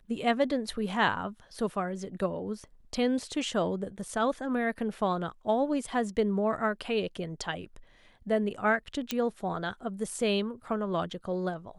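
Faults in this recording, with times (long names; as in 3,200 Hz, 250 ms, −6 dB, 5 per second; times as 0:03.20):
0:09.11: click −14 dBFS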